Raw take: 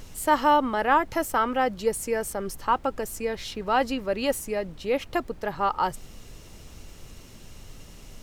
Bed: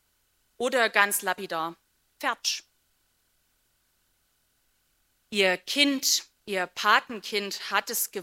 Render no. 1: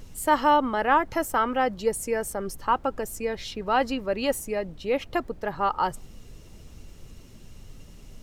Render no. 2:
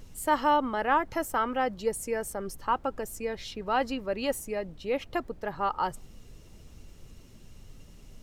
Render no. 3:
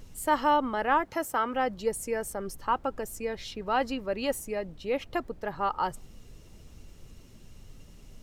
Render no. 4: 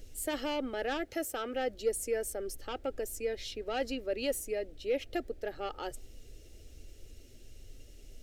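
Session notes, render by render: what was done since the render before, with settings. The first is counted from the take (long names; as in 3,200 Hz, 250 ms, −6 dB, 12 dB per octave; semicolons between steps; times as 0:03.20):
broadband denoise 6 dB, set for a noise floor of −47 dBFS
level −4 dB
0:01.04–0:01.54: high-pass filter 160 Hz 6 dB per octave
soft clipping −19.5 dBFS, distortion −15 dB; phaser with its sweep stopped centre 420 Hz, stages 4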